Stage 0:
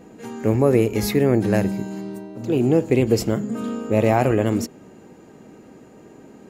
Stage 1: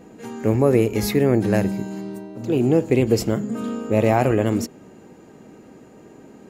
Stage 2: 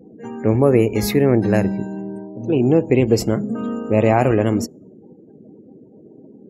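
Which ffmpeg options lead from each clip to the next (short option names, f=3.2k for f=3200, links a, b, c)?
-af anull
-af "afftdn=nr=36:nf=-41,volume=2.5dB"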